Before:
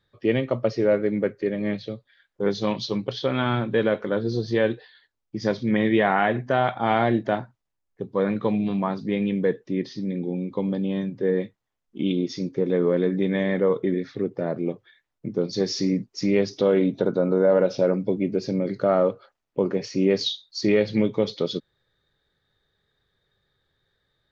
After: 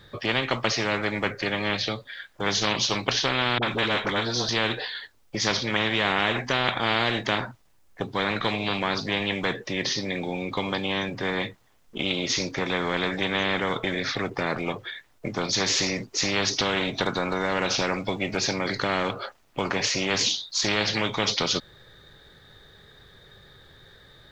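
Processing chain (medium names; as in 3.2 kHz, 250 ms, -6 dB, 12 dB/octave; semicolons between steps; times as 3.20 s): 3.58–4.49 s: phase dispersion highs, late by 47 ms, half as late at 540 Hz; spectrum-flattening compressor 4:1; trim +2 dB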